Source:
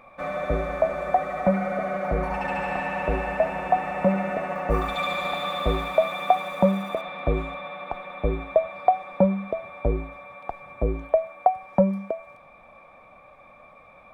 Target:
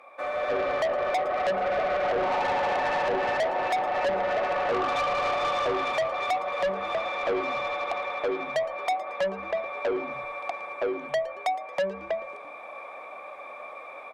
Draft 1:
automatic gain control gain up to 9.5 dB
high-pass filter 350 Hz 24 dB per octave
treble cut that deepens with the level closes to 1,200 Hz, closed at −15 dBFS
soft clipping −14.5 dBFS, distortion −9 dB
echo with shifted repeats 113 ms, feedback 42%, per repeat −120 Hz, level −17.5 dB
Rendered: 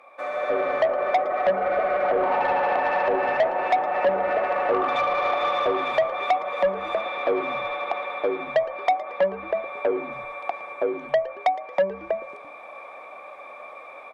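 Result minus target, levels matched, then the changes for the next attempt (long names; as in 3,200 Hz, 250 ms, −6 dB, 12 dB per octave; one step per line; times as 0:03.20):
soft clipping: distortion −5 dB
change: soft clipping −22.5 dBFS, distortion −4 dB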